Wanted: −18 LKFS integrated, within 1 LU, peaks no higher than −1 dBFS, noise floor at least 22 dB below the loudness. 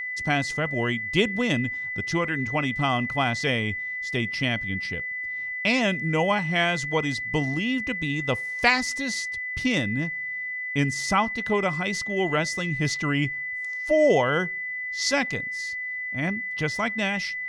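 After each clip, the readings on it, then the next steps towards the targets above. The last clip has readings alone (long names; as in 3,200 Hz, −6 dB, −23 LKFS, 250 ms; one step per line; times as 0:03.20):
interfering tone 2,000 Hz; level of the tone −29 dBFS; integrated loudness −25.0 LKFS; sample peak −5.5 dBFS; target loudness −18.0 LKFS
→ notch filter 2,000 Hz, Q 30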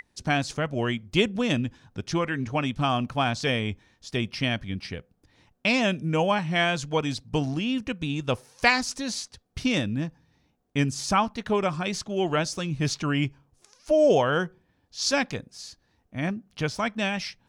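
interfering tone none found; integrated loudness −26.5 LKFS; sample peak −6.5 dBFS; target loudness −18.0 LKFS
→ level +8.5 dB
brickwall limiter −1 dBFS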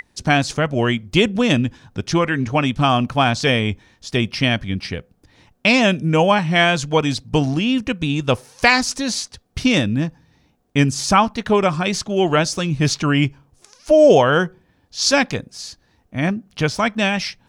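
integrated loudness −18.0 LKFS; sample peak −1.0 dBFS; background noise floor −61 dBFS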